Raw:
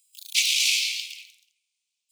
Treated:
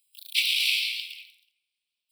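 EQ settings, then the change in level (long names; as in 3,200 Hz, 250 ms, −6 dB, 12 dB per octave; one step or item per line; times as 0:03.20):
phaser with its sweep stopped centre 2,900 Hz, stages 4
0.0 dB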